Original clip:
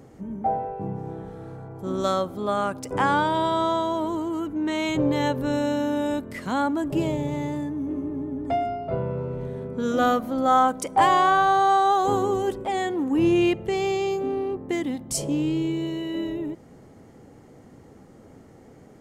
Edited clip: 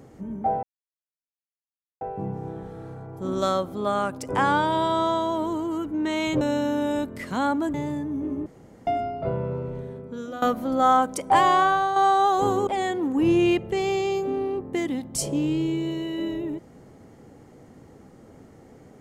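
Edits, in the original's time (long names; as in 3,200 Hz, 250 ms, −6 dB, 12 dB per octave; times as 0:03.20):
0:00.63: splice in silence 1.38 s
0:05.03–0:05.56: remove
0:06.89–0:07.40: remove
0:08.12–0:08.53: fill with room tone
0:09.22–0:10.08: fade out linear, to −17.5 dB
0:11.25–0:11.62: fade out, to −7 dB
0:12.33–0:12.63: remove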